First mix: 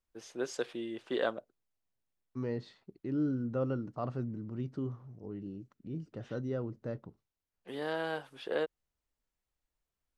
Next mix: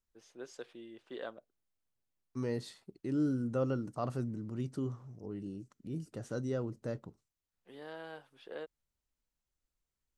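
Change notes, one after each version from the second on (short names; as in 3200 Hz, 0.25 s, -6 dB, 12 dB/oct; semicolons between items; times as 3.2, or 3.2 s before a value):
first voice -11.0 dB; second voice: remove air absorption 200 m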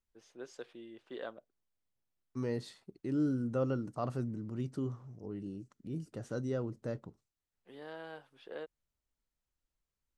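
master: add high shelf 6300 Hz -4.5 dB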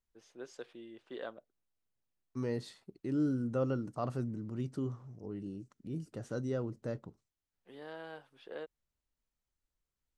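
none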